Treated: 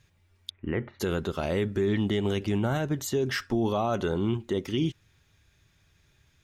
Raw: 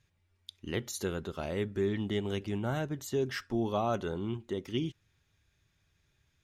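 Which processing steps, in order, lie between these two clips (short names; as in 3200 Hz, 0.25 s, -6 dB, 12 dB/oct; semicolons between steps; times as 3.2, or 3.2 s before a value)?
0.5–1 steep low-pass 2300 Hz 36 dB/oct; limiter -26.5 dBFS, peak gain reduction 6.5 dB; gain +8.5 dB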